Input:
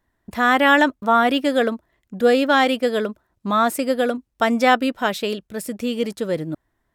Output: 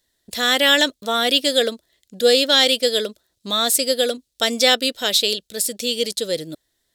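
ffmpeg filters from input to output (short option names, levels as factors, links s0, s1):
-af "aexciter=amount=4.8:drive=6.3:freq=3200,equalizer=f=500:t=o:w=1:g=10,equalizer=f=1000:t=o:w=1:g=-6,equalizer=f=2000:t=o:w=1:g=8,equalizer=f=4000:t=o:w=1:g=10,equalizer=f=8000:t=o:w=1:g=4,volume=0.376"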